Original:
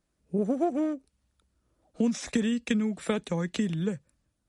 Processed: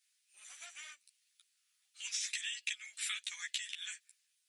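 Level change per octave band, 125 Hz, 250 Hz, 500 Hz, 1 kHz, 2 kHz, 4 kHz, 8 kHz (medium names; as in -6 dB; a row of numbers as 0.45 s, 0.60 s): under -40 dB, under -40 dB, under -40 dB, -22.0 dB, -2.0 dB, +2.5 dB, +3.0 dB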